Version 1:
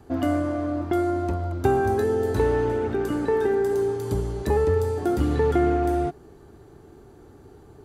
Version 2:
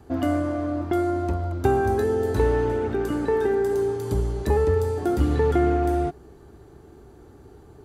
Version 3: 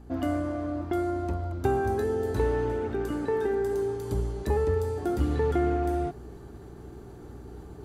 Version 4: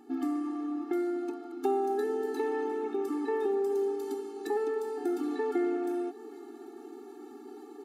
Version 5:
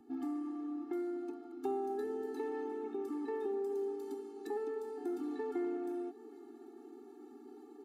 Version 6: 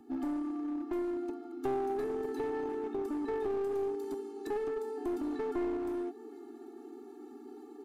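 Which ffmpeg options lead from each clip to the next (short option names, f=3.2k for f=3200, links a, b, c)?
-af "equalizer=f=63:t=o:w=0.31:g=7"
-af "areverse,acompressor=mode=upward:threshold=-31dB:ratio=2.5,areverse,aeval=exprs='val(0)+0.00891*(sin(2*PI*60*n/s)+sin(2*PI*2*60*n/s)/2+sin(2*PI*3*60*n/s)/3+sin(2*PI*4*60*n/s)/4+sin(2*PI*5*60*n/s)/5)':c=same,volume=-5dB"
-filter_complex "[0:a]asplit=2[a][b];[b]acompressor=threshold=-35dB:ratio=6,volume=-1dB[c];[a][c]amix=inputs=2:normalize=0,aecho=1:1:792:0.0794,afftfilt=real='re*eq(mod(floor(b*sr/1024/230),2),1)':imag='im*eq(mod(floor(b*sr/1024/230),2),1)':win_size=1024:overlap=0.75,volume=-3.5dB"
-filter_complex "[0:a]acrossover=split=210|1100[a][b][c];[a]aeval=exprs='0.0168*sin(PI/2*1.78*val(0)/0.0168)':c=same[d];[c]aeval=exprs='0.0211*(cos(1*acos(clip(val(0)/0.0211,-1,1)))-cos(1*PI/2))+0.00188*(cos(3*acos(clip(val(0)/0.0211,-1,1)))-cos(3*PI/2))':c=same[e];[d][b][e]amix=inputs=3:normalize=0,volume=-8.5dB"
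-af "aeval=exprs='clip(val(0),-1,0.0141)':c=same,volume=4.5dB"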